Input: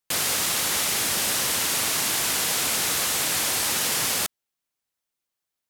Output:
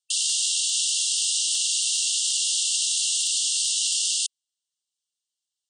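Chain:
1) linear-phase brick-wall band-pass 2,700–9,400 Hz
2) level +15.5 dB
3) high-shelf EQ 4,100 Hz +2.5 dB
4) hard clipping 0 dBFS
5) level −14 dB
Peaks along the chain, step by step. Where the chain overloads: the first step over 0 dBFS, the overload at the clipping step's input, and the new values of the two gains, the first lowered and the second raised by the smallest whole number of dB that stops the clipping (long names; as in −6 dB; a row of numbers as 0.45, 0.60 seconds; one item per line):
−14.0, +1.5, +3.5, 0.0, −14.0 dBFS
step 2, 3.5 dB
step 2 +11.5 dB, step 5 −10 dB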